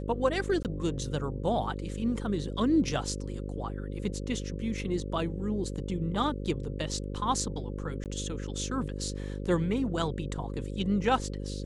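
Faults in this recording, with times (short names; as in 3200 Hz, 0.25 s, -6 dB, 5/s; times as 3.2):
buzz 50 Hz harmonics 11 -36 dBFS
0.63–0.65 gap 18 ms
8.04–8.06 gap 18 ms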